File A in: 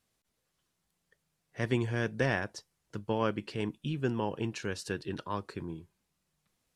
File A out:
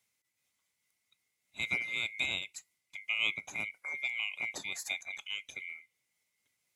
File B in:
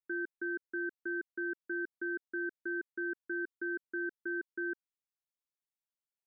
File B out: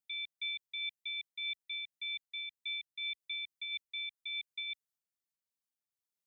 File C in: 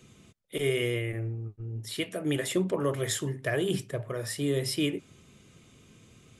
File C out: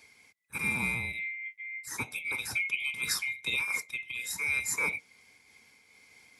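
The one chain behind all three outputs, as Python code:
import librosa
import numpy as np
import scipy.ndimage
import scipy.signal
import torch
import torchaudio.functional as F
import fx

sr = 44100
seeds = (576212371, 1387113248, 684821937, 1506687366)

y = fx.band_swap(x, sr, width_hz=2000)
y = scipy.signal.sosfilt(scipy.signal.butter(2, 78.0, 'highpass', fs=sr, output='sos'), y)
y = fx.bass_treble(y, sr, bass_db=6, treble_db=6)
y = fx.am_noise(y, sr, seeds[0], hz=5.7, depth_pct=50)
y = y * 10.0 ** (-2.0 / 20.0)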